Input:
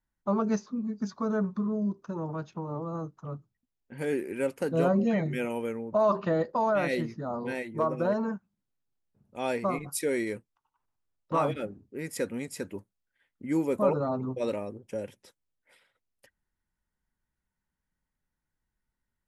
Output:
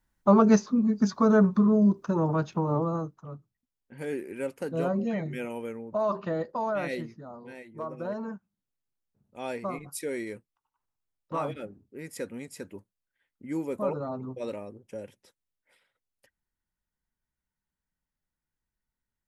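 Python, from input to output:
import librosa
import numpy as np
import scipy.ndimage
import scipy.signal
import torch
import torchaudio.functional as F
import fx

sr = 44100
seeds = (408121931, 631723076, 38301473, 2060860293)

y = fx.gain(x, sr, db=fx.line((2.81, 8.5), (3.26, -3.5), (6.92, -3.5), (7.42, -12.0), (8.34, -4.5)))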